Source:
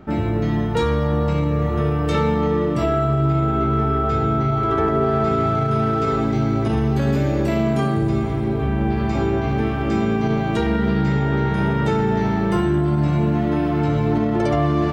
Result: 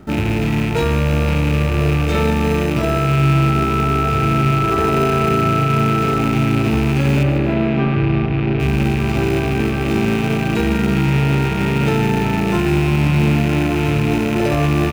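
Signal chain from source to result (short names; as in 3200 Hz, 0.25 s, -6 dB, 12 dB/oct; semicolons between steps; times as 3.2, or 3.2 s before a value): rattling part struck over -24 dBFS, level -16 dBFS; in parallel at -8 dB: sample-and-hold 39×; 7.23–8.6 on the sum: Gaussian blur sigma 2.5 samples; on a send: feedback echo 0.151 s, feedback 54%, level -12 dB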